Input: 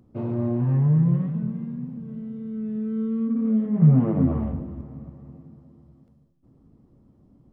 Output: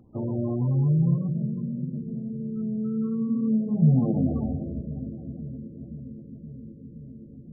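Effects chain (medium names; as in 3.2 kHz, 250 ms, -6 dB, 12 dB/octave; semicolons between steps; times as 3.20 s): low-pass that closes with the level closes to 1.1 kHz, closed at -18 dBFS; 3.02–4.68 s: high-pass 57 Hz 6 dB/octave; in parallel at -1 dB: compression 20:1, threshold -32 dBFS, peak gain reduction 21.5 dB; on the sum: bucket-brigade echo 521 ms, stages 2048, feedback 81%, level -17 dB; on a send at -12 dB: reverberation RT60 1.6 s, pre-delay 83 ms; on the sum: trim -3.5 dB; MP3 8 kbps 24 kHz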